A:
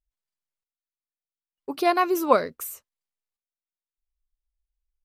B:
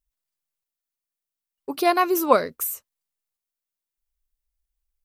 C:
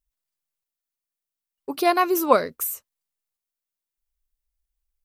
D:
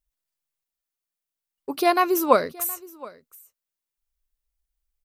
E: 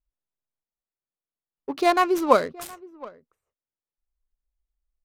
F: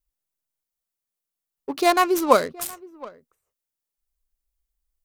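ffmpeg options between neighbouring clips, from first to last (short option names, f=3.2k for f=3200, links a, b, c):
-af "highshelf=f=8.1k:g=8.5,volume=1.5dB"
-af anull
-af "aecho=1:1:719:0.0841"
-af "adynamicsmooth=sensitivity=6.5:basefreq=1.2k"
-af "highshelf=f=5.8k:g=11,volume=1dB"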